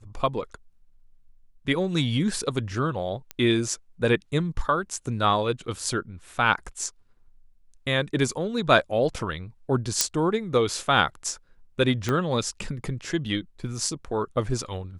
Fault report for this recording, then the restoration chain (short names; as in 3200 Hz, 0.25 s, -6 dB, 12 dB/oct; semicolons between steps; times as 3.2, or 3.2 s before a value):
3.31 pop -16 dBFS
10.01 pop -3 dBFS
12.09 pop -12 dBFS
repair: de-click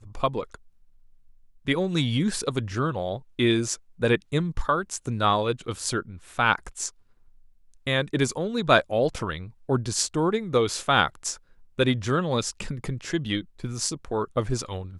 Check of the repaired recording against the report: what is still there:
12.09 pop